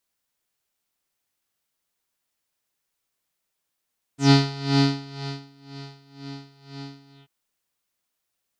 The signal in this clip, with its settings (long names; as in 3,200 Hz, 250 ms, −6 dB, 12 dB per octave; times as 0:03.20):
subtractive patch with tremolo C#4, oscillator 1 triangle, oscillator 2 square, interval 0 semitones, detune 9 cents, oscillator 2 level −8 dB, sub −1 dB, noise −20 dB, filter lowpass, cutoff 3,000 Hz, Q 5.5, filter envelope 1.5 octaves, filter decay 0.10 s, attack 125 ms, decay 1.09 s, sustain −23 dB, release 0.16 s, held 2.93 s, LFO 2 Hz, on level 18 dB